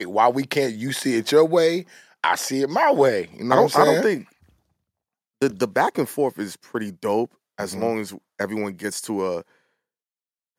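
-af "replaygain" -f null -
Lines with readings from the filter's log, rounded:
track_gain = +0.5 dB
track_peak = 0.481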